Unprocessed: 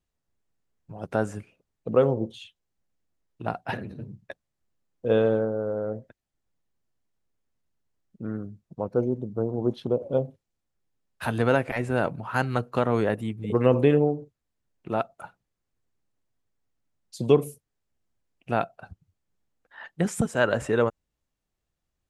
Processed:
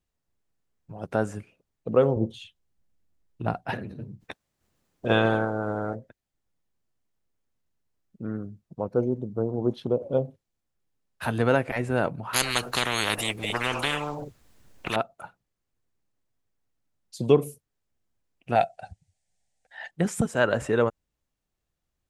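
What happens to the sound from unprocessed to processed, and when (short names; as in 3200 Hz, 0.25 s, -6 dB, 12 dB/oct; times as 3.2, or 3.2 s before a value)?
2.16–3.69 low shelf 200 Hz +8 dB
4.2–5.94 spectral limiter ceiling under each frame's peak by 19 dB
12.33–14.96 spectral compressor 10:1
18.55–19.91 EQ curve 100 Hz 0 dB, 210 Hz -4 dB, 340 Hz -10 dB, 760 Hz +9 dB, 1100 Hz -13 dB, 1900 Hz +6 dB, 2900 Hz +4 dB, 5700 Hz +10 dB, 9100 Hz +14 dB, 14000 Hz -18 dB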